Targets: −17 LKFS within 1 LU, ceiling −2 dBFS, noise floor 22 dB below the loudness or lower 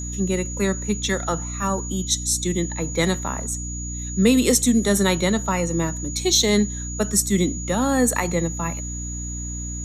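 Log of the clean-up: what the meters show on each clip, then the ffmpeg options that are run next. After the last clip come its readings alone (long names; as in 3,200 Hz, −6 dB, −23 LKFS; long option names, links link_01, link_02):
mains hum 60 Hz; hum harmonics up to 300 Hz; level of the hum −29 dBFS; interfering tone 6,800 Hz; level of the tone −32 dBFS; integrated loudness −22.0 LKFS; sample peak −5.0 dBFS; target loudness −17.0 LKFS
→ -af "bandreject=frequency=60:width_type=h:width=4,bandreject=frequency=120:width_type=h:width=4,bandreject=frequency=180:width_type=h:width=4,bandreject=frequency=240:width_type=h:width=4,bandreject=frequency=300:width_type=h:width=4"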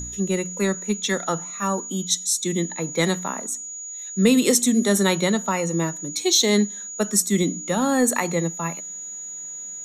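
mains hum none found; interfering tone 6,800 Hz; level of the tone −32 dBFS
→ -af "bandreject=frequency=6800:width=30"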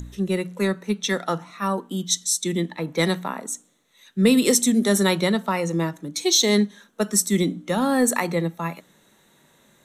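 interfering tone none found; integrated loudness −22.5 LKFS; sample peak −5.5 dBFS; target loudness −17.0 LKFS
→ -af "volume=5.5dB,alimiter=limit=-2dB:level=0:latency=1"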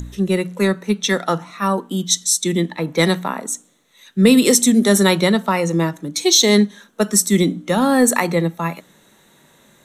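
integrated loudness −17.0 LKFS; sample peak −2.0 dBFS; background noise floor −54 dBFS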